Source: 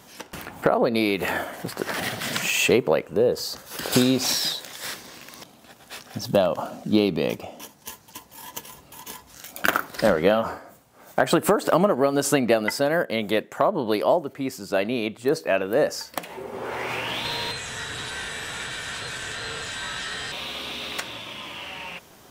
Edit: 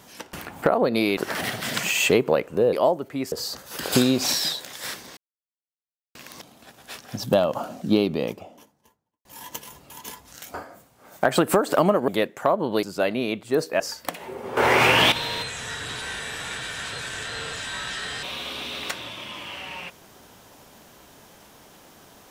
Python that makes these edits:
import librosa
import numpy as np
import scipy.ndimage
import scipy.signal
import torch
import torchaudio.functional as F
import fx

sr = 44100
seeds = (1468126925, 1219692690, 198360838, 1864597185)

y = fx.studio_fade_out(x, sr, start_s=6.83, length_s=1.44)
y = fx.edit(y, sr, fx.cut(start_s=1.17, length_s=0.59),
    fx.insert_silence(at_s=5.17, length_s=0.98),
    fx.cut(start_s=9.56, length_s=0.93),
    fx.cut(start_s=12.03, length_s=1.2),
    fx.move(start_s=13.98, length_s=0.59, to_s=3.32),
    fx.cut(start_s=15.54, length_s=0.35),
    fx.clip_gain(start_s=16.66, length_s=0.55, db=12.0), tone=tone)